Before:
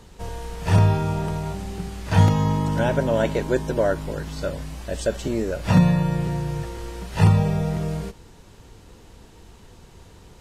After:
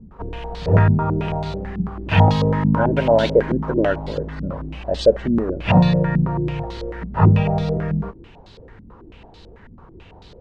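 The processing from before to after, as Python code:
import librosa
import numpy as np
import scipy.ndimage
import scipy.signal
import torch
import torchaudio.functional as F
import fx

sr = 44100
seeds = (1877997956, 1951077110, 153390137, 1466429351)

y = fx.quant_dither(x, sr, seeds[0], bits=6, dither='none', at=(2.1, 3.71))
y = fx.filter_held_lowpass(y, sr, hz=9.1, low_hz=220.0, high_hz=4100.0)
y = y * 10.0 ** (1.5 / 20.0)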